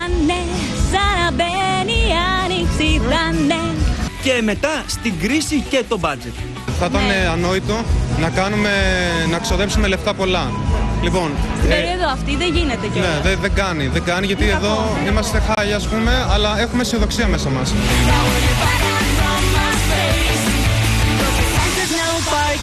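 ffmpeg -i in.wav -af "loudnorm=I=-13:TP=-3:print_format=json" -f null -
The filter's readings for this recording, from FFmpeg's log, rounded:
"input_i" : "-17.1",
"input_tp" : "-3.6",
"input_lra" : "2.4",
"input_thresh" : "-27.2",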